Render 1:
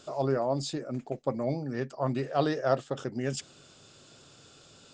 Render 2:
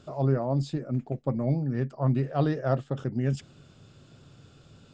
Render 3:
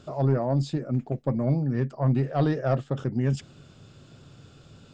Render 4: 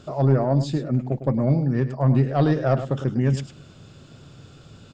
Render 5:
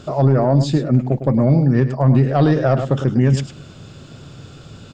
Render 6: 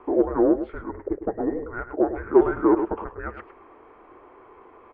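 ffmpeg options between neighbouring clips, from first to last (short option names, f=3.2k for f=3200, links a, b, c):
-af "bass=f=250:g=13,treble=f=4k:g=-9,volume=-2.5dB"
-af "asoftclip=type=tanh:threshold=-15.5dB,volume=3dB"
-af "aecho=1:1:104:0.266,volume=4dB"
-af "alimiter=level_in=12.5dB:limit=-1dB:release=50:level=0:latency=1,volume=-5dB"
-af "highpass=f=360:t=q:w=0.5412,highpass=f=360:t=q:w=1.307,lowpass=f=2.1k:t=q:w=0.5176,lowpass=f=2.1k:t=q:w=0.7071,lowpass=f=2.1k:t=q:w=1.932,afreqshift=-340,lowshelf=f=260:t=q:w=3:g=-13.5"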